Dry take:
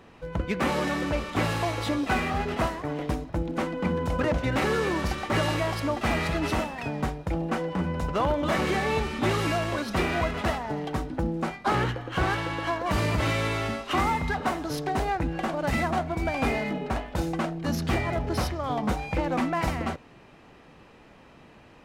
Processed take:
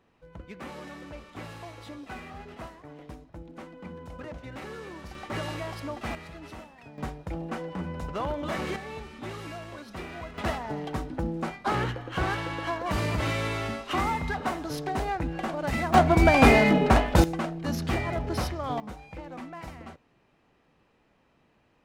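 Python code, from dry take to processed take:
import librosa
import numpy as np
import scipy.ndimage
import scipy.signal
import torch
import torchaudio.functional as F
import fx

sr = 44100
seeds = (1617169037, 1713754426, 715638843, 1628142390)

y = fx.gain(x, sr, db=fx.steps((0.0, -15.0), (5.15, -8.0), (6.15, -16.5), (6.98, -6.0), (8.76, -13.0), (10.38, -2.5), (15.94, 9.5), (17.24, -2.0), (18.8, -14.0)))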